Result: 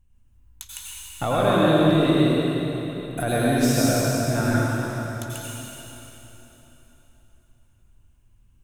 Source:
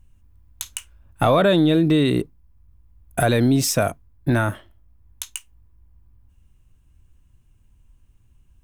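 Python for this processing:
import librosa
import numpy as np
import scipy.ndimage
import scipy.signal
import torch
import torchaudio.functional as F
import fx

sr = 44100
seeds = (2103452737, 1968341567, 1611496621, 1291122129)

y = fx.rev_plate(x, sr, seeds[0], rt60_s=3.7, hf_ratio=0.9, predelay_ms=75, drr_db=-7.0)
y = y * 10.0 ** (-8.5 / 20.0)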